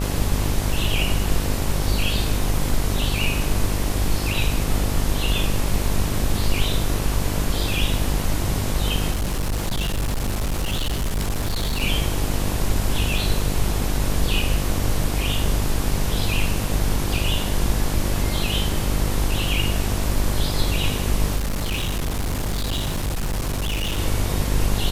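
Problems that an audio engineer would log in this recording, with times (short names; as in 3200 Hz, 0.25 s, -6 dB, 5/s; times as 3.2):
buzz 50 Hz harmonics 23 -25 dBFS
9.11–11.83 clipped -19.5 dBFS
13.18 gap 2.7 ms
21.36–23.99 clipped -20.5 dBFS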